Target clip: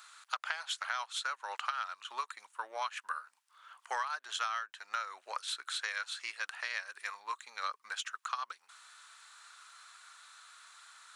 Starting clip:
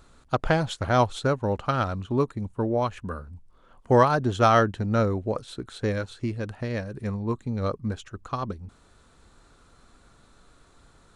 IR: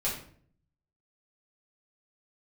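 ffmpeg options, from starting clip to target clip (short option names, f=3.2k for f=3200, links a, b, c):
-af "highpass=f=1.2k:w=0.5412,highpass=f=1.2k:w=1.3066,acompressor=threshold=-40dB:ratio=16,volume=7.5dB"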